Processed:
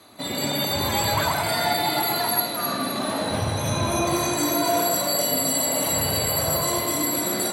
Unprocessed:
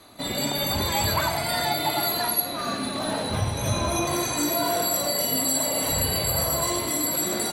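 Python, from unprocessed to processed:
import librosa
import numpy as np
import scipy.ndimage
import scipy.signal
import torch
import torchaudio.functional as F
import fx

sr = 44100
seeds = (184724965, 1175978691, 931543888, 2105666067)

p1 = scipy.signal.sosfilt(scipy.signal.butter(2, 93.0, 'highpass', fs=sr, output='sos'), x)
y = p1 + fx.echo_alternate(p1, sr, ms=129, hz=2300.0, feedback_pct=62, wet_db=-2, dry=0)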